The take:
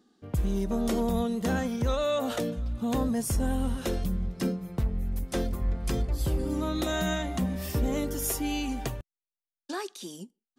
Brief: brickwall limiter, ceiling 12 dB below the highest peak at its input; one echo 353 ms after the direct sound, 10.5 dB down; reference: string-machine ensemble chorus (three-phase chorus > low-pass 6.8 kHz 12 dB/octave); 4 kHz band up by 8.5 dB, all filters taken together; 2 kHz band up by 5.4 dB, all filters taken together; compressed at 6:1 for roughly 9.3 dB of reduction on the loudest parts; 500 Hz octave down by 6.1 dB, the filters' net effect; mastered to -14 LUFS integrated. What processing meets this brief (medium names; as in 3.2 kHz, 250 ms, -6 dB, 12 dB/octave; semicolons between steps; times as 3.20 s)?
peaking EQ 500 Hz -8 dB; peaking EQ 2 kHz +5.5 dB; peaking EQ 4 kHz +9 dB; compression 6:1, threshold -33 dBFS; peak limiter -31 dBFS; delay 353 ms -10.5 dB; three-phase chorus; low-pass 6.8 kHz 12 dB/octave; trim +29 dB